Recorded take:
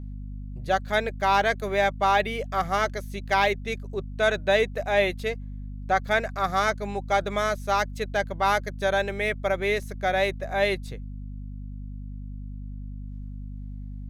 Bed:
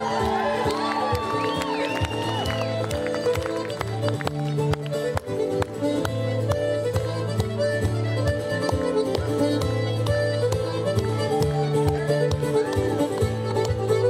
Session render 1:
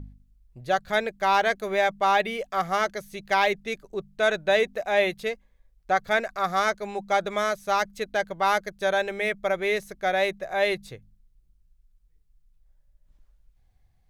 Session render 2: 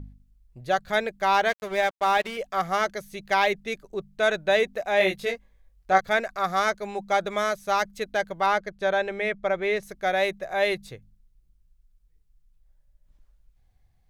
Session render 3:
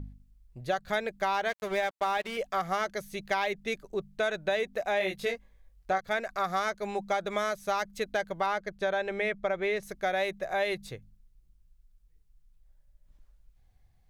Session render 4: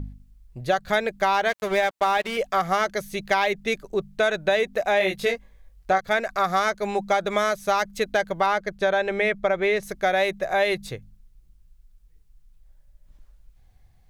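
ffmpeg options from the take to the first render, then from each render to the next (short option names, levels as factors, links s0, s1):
-af "bandreject=f=50:t=h:w=4,bandreject=f=100:t=h:w=4,bandreject=f=150:t=h:w=4,bandreject=f=200:t=h:w=4,bandreject=f=250:t=h:w=4"
-filter_complex "[0:a]asettb=1/sr,asplit=3[s0][s1][s2];[s0]atrim=end=1.494[s3];[s1]atrim=start=1.49:end=2.37,asetpts=PTS-STARTPTS,afade=t=in:d=0.004:c=qsin,afade=t=out:st=0.876:d=0.004:c=qsin,aeval=exprs='sgn(val(0))*max(abs(val(0))-0.0141,0)':c=same[s4];[s2]atrim=start=2.366[s5];[s3][s4]acrossfade=d=0.004:c1=hsin:c2=qsin[s6];[s6][s5]acrossfade=d=0.004:c1=qsin:c2=hsin,asettb=1/sr,asplit=3[s7][s8][s9];[s7]atrim=end=4.984[s10];[s8]atrim=start=4.98:end=6.01,asetpts=PTS-STARTPTS,afade=t=in:d=0.004:c=qsin,afade=t=out:st=1.026:d=0.004:c=qsin,asplit=2[s11][s12];[s12]adelay=21,volume=0.75[s13];[s11][s13]amix=inputs=2:normalize=0,atrim=end_sample=45423[s14];[s9]atrim=start=6.006[s15];[s10][s14]acrossfade=d=0.004:c1=hsin:c2=qsin[s16];[s16][s15]acrossfade=d=0.004:c1=qsin:c2=hsin,asettb=1/sr,asplit=3[s17][s18][s19];[s17]atrim=end=8.464[s20];[s18]atrim=start=8.46:end=9.83,asetpts=PTS-STARTPTS,afade=t=in:d=0.004:c=qsin,afade=t=out:st=1.366:d=0.004:c=qsin,aemphasis=mode=reproduction:type=50fm[s21];[s19]atrim=start=9.826[s22];[s20][s21]acrossfade=d=0.004:c1=hsin:c2=qsin[s23];[s23][s22]acrossfade=d=0.004:c1=qsin:c2=hsin"
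-af "acompressor=threshold=0.0501:ratio=5"
-af "volume=2.37"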